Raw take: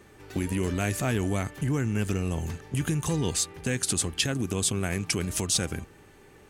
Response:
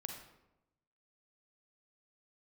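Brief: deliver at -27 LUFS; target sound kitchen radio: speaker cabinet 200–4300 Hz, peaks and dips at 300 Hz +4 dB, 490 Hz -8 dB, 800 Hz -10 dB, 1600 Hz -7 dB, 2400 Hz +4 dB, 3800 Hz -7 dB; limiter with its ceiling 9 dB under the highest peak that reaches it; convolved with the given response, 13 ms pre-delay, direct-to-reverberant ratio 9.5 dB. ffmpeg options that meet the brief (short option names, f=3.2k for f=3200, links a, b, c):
-filter_complex "[0:a]alimiter=limit=-19dB:level=0:latency=1,asplit=2[a][b];[1:a]atrim=start_sample=2205,adelay=13[c];[b][c]afir=irnorm=-1:irlink=0,volume=-7.5dB[d];[a][d]amix=inputs=2:normalize=0,highpass=200,equalizer=f=300:t=q:w=4:g=4,equalizer=f=490:t=q:w=4:g=-8,equalizer=f=800:t=q:w=4:g=-10,equalizer=f=1.6k:t=q:w=4:g=-7,equalizer=f=2.4k:t=q:w=4:g=4,equalizer=f=3.8k:t=q:w=4:g=-7,lowpass=f=4.3k:w=0.5412,lowpass=f=4.3k:w=1.3066,volume=7dB"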